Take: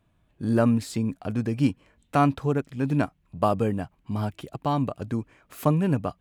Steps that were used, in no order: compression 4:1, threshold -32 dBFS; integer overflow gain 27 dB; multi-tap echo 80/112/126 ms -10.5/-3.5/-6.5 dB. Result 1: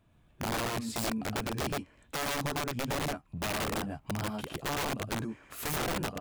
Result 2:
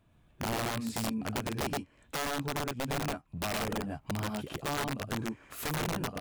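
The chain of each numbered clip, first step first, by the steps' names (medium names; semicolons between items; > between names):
compression > multi-tap echo > integer overflow; multi-tap echo > compression > integer overflow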